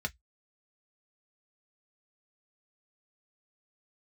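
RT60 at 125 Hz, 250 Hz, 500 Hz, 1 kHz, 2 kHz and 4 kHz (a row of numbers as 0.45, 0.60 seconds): 0.15, 0.10, 0.05, 0.10, 0.10, 0.10 seconds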